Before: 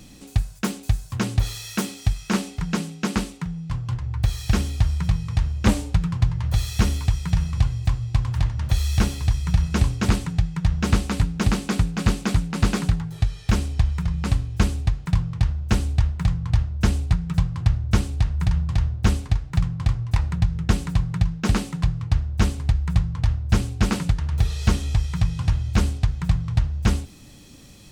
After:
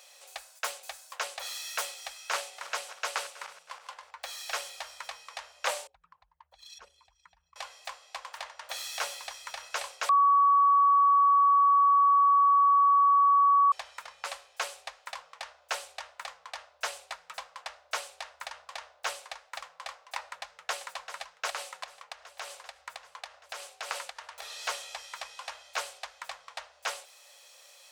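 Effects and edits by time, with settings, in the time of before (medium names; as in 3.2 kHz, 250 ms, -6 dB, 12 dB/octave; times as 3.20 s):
2.03–4.11 s: backward echo that repeats 160 ms, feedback 60%, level -14 dB
5.87–7.56 s: resonances exaggerated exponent 2
10.09–13.72 s: bleep 1.13 kHz -16 dBFS
20.29–20.86 s: echo throw 390 ms, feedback 75%, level -11 dB
21.50–24.42 s: compression, threshold -20 dBFS
whole clip: elliptic high-pass 550 Hz, stop band 50 dB; trim -2 dB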